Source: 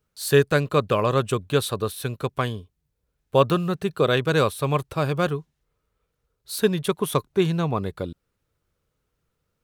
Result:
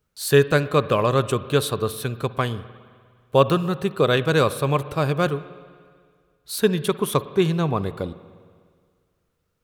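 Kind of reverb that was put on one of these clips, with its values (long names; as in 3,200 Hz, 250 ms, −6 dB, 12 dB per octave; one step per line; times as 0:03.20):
spring reverb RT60 1.9 s, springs 50/59 ms, chirp 30 ms, DRR 15 dB
level +1.5 dB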